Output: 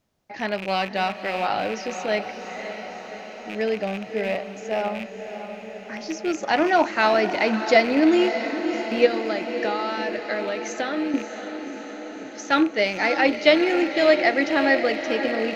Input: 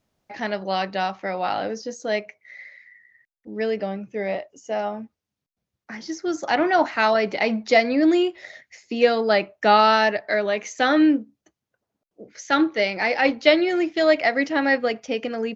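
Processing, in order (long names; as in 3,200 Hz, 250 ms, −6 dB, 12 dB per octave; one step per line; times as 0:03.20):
loose part that buzzes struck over −37 dBFS, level −23 dBFS
0:09.06–0:11.14: downward compressor, threshold −25 dBFS, peak gain reduction 13.5 dB
feedback delay with all-pass diffusion 587 ms, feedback 69%, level −9.5 dB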